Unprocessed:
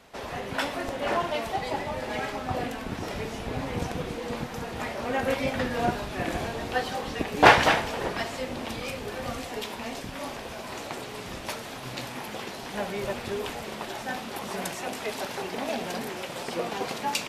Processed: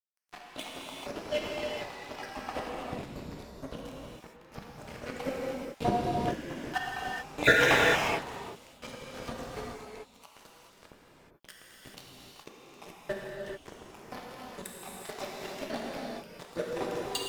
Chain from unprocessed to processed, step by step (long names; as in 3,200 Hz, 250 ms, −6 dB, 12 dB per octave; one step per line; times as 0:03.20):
time-frequency cells dropped at random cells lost 71%
dead-zone distortion −35 dBFS
reverb whose tail is shaped and stops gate 460 ms flat, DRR −3.5 dB